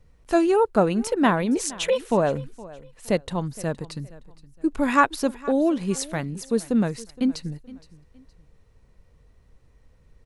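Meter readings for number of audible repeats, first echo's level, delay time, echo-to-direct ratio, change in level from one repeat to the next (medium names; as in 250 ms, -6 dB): 2, -20.0 dB, 467 ms, -19.5 dB, -10.5 dB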